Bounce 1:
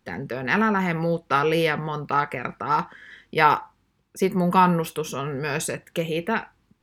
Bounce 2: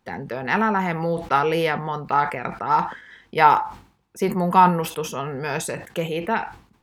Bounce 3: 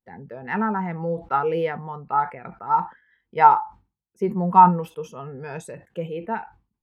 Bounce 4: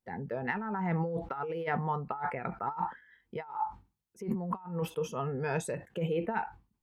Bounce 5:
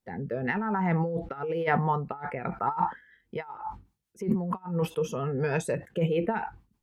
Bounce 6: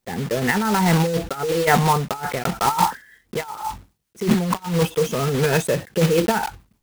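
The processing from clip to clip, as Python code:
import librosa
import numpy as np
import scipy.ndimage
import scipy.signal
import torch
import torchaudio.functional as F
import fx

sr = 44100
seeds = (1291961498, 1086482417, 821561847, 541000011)

y1 = fx.peak_eq(x, sr, hz=810.0, db=7.0, octaves=0.83)
y1 = fx.sustainer(y1, sr, db_per_s=120.0)
y1 = y1 * 10.0 ** (-1.5 / 20.0)
y2 = fx.low_shelf(y1, sr, hz=78.0, db=6.0)
y2 = fx.spectral_expand(y2, sr, expansion=1.5)
y3 = fx.over_compress(y2, sr, threshold_db=-30.0, ratio=-1.0)
y3 = y3 * 10.0 ** (-5.0 / 20.0)
y4 = fx.rotary_switch(y3, sr, hz=1.0, then_hz=6.7, switch_at_s=3.11)
y4 = y4 * 10.0 ** (7.0 / 20.0)
y5 = fx.block_float(y4, sr, bits=3)
y5 = y5 * 10.0 ** (8.5 / 20.0)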